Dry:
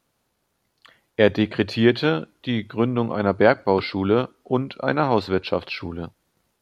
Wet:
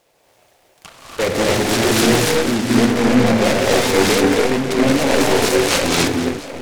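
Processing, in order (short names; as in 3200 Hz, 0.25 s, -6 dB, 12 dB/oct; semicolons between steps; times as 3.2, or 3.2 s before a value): high shelf 2800 Hz -10.5 dB; in parallel at -10 dB: sine folder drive 14 dB, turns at -6 dBFS; on the sum: tone controls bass 0 dB, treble +7 dB; overdrive pedal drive 23 dB, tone 4000 Hz, clips at 0 dBFS; envelope phaser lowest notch 220 Hz, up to 1300 Hz, full sweep at -13.5 dBFS; on a send: split-band echo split 1700 Hz, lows 0.71 s, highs 0.213 s, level -13 dB; on the sum: non-linear reverb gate 0.32 s rising, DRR -5 dB; noise-modulated delay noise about 1400 Hz, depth 0.11 ms; gain -8 dB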